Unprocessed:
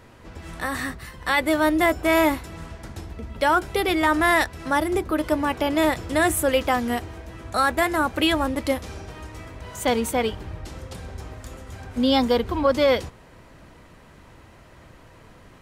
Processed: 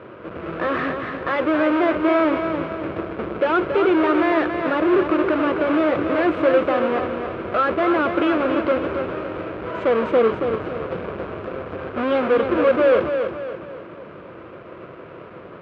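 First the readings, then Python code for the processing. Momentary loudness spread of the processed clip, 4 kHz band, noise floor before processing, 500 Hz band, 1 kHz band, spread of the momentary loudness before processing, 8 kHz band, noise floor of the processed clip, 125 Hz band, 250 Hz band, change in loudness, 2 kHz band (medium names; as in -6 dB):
19 LU, -7.5 dB, -49 dBFS, +5.5 dB, +0.5 dB, 19 LU, under -25 dB, -40 dBFS, -1.5 dB, +3.5 dB, +1.5 dB, -1.0 dB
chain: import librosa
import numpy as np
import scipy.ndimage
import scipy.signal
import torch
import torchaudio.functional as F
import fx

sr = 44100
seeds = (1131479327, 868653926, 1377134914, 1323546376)

p1 = fx.halfwave_hold(x, sr)
p2 = fx.over_compress(p1, sr, threshold_db=-26.0, ratio=-1.0)
p3 = p1 + F.gain(torch.from_numpy(p2), -2.0).numpy()
p4 = np.clip(p3, -10.0 ** (-15.5 / 20.0), 10.0 ** (-15.5 / 20.0))
p5 = fx.cabinet(p4, sr, low_hz=230.0, low_slope=12, high_hz=2300.0, hz=(250.0, 360.0, 530.0, 830.0, 1300.0, 1900.0), db=(-7, 4, 4, -9, 3, -8))
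y = fx.echo_feedback(p5, sr, ms=278, feedback_pct=42, wet_db=-7.0)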